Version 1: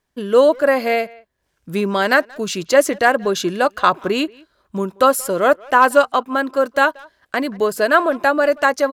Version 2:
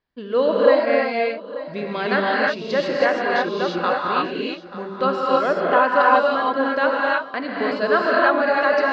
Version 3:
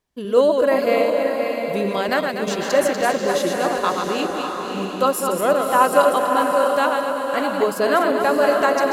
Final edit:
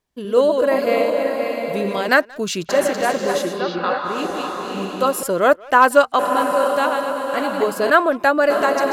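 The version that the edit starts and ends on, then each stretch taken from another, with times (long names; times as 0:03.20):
3
0:02.09–0:02.69: punch in from 1
0:03.51–0:04.15: punch in from 2, crossfade 0.24 s
0:05.23–0:06.19: punch in from 1
0:07.90–0:08.50: punch in from 1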